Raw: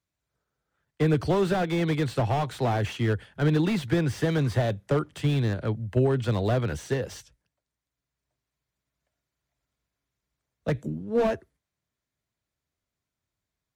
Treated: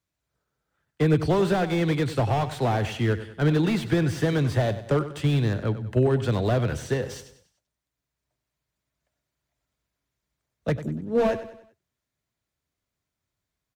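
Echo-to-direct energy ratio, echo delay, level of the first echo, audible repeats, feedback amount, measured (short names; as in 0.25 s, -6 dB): -12.0 dB, 96 ms, -13.0 dB, 4, 43%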